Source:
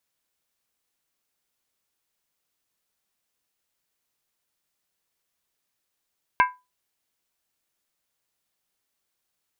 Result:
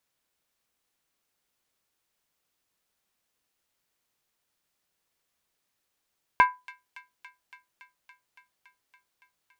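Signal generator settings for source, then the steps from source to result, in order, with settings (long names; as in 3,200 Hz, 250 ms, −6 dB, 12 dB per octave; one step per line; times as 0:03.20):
struck skin, lowest mode 999 Hz, decay 0.24 s, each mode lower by 4.5 dB, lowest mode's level −12 dB
high-shelf EQ 4,500 Hz −4.5 dB
in parallel at −10 dB: soft clipping −22 dBFS
on the sum: delay with a high-pass on its return 282 ms, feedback 79%, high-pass 2,900 Hz, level −12 dB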